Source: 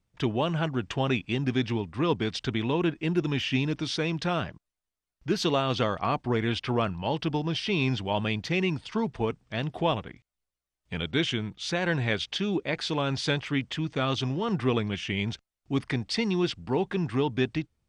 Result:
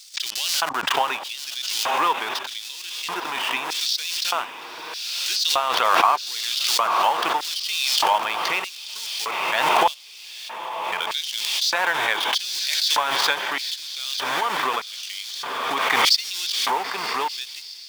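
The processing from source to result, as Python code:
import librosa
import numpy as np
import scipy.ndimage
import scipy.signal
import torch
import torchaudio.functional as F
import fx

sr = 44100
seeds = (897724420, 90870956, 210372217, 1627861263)

p1 = fx.transient(x, sr, attack_db=8, sustain_db=-6)
p2 = fx.schmitt(p1, sr, flips_db=-31.5)
p3 = p1 + F.gain(torch.from_numpy(p2), -5.0).numpy()
p4 = fx.echo_diffused(p3, sr, ms=913, feedback_pct=66, wet_db=-10.5)
p5 = fx.filter_lfo_highpass(p4, sr, shape='square', hz=0.81, low_hz=960.0, high_hz=4600.0, q=2.4)
y = fx.pre_swell(p5, sr, db_per_s=23.0)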